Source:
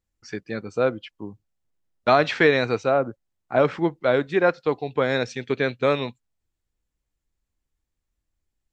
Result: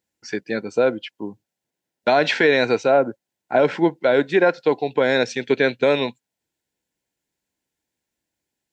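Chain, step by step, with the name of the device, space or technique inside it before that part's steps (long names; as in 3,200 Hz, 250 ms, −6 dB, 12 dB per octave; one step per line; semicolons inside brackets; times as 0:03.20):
PA system with an anti-feedback notch (high-pass filter 200 Hz 12 dB per octave; Butterworth band-reject 1,200 Hz, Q 4.3; brickwall limiter −13.5 dBFS, peak gain reduction 7 dB)
level +6.5 dB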